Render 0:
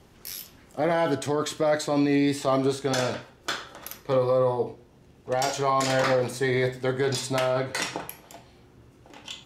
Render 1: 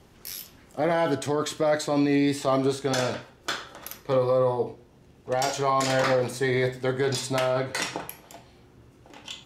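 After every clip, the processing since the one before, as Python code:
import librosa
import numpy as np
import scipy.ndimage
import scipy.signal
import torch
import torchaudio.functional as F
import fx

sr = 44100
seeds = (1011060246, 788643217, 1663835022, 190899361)

y = x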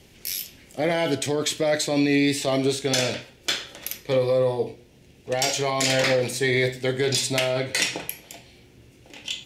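y = fx.curve_eq(x, sr, hz=(560.0, 1200.0, 2300.0, 4000.0), db=(0, -9, 8, 6))
y = y * 10.0 ** (1.5 / 20.0)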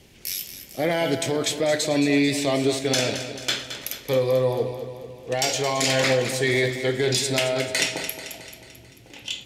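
y = fx.echo_feedback(x, sr, ms=220, feedback_pct=55, wet_db=-10.5)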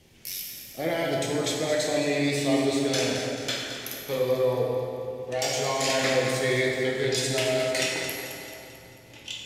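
y = fx.rev_plate(x, sr, seeds[0], rt60_s=2.6, hf_ratio=0.6, predelay_ms=0, drr_db=-1.5)
y = y * 10.0 ** (-6.5 / 20.0)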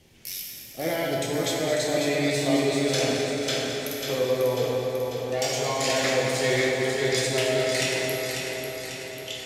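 y = fx.echo_feedback(x, sr, ms=544, feedback_pct=57, wet_db=-6.0)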